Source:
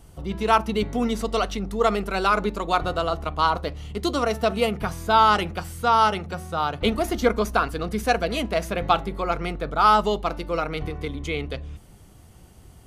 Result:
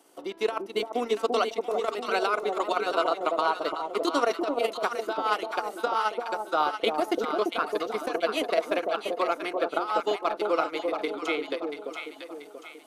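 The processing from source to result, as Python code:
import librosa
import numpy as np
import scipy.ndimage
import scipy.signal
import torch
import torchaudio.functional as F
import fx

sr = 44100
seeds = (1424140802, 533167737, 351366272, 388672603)

y = scipy.signal.sosfilt(scipy.signal.cheby1(4, 1.0, 290.0, 'highpass', fs=sr, output='sos'), x)
y = fx.transient(y, sr, attack_db=6, sustain_db=-11)
y = fx.over_compress(y, sr, threshold_db=-19.0, ratio=-0.5)
y = fx.echo_alternate(y, sr, ms=342, hz=870.0, feedback_pct=64, wet_db=-2.5)
y = y * 10.0 ** (-5.0 / 20.0)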